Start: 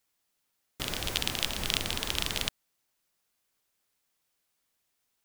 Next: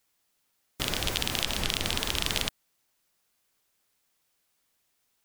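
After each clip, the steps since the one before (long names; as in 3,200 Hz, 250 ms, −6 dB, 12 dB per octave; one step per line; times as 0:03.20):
gate on every frequency bin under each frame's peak −30 dB strong
boost into a limiter +10 dB
level −6 dB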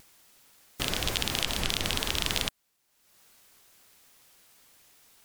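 upward compression, threshold −45 dBFS
pitch modulation by a square or saw wave saw down 4.7 Hz, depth 100 cents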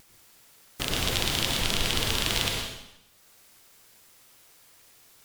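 dense smooth reverb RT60 0.9 s, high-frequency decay 0.95×, pre-delay 85 ms, DRR 0 dB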